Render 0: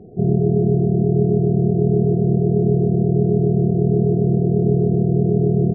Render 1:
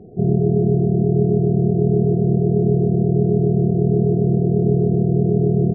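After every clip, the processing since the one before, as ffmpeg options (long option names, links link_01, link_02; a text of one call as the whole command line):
ffmpeg -i in.wav -af anull out.wav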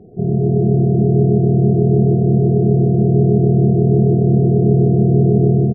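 ffmpeg -i in.wav -filter_complex "[0:a]dynaudnorm=framelen=290:gausssize=3:maxgain=11.5dB,asplit=2[link_01][link_02];[link_02]adelay=139.9,volume=-7dB,highshelf=frequency=4000:gain=-3.15[link_03];[link_01][link_03]amix=inputs=2:normalize=0,volume=-1dB" out.wav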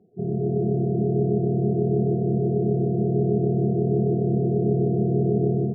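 ffmpeg -i in.wav -af "afftdn=noise_reduction=14:noise_floor=-24,highpass=frequency=230:poles=1,areverse,acompressor=mode=upward:threshold=-23dB:ratio=2.5,areverse,volume=-5dB" out.wav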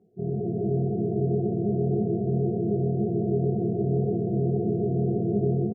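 ffmpeg -i in.wav -filter_complex "[0:a]flanger=delay=17.5:depth=4.9:speed=1.9,asplit=2[link_01][link_02];[link_02]adelay=20,volume=-14dB[link_03];[link_01][link_03]amix=inputs=2:normalize=0" out.wav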